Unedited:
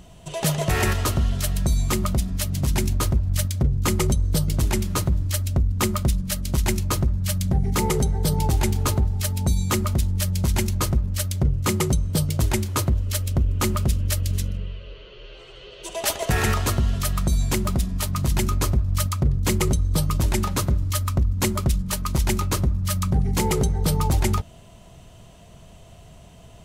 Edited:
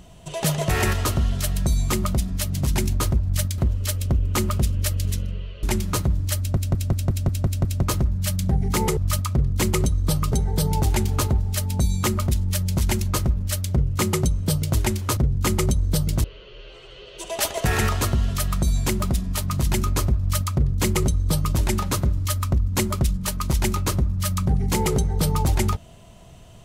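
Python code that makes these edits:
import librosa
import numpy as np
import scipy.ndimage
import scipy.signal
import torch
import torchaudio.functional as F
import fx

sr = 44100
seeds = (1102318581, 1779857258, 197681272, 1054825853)

y = fx.edit(x, sr, fx.swap(start_s=3.58, length_s=1.07, other_s=12.84, other_length_s=2.05),
    fx.stutter_over(start_s=5.41, slice_s=0.18, count=8),
    fx.duplicate(start_s=18.84, length_s=1.35, to_s=7.99), tone=tone)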